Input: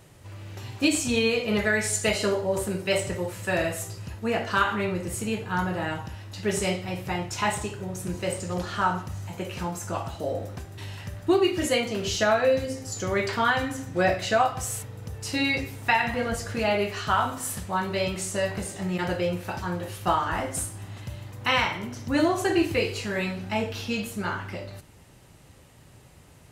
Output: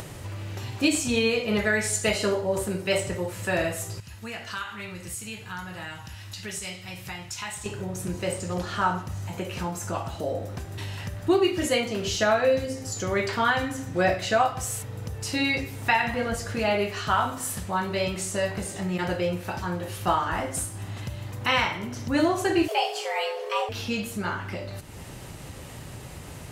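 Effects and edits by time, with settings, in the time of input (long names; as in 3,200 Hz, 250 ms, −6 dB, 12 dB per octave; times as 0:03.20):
0:04.00–0:07.66: guitar amp tone stack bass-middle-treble 5-5-5
0:22.68–0:23.69: frequency shifter +320 Hz
whole clip: upward compression, threshold −28 dBFS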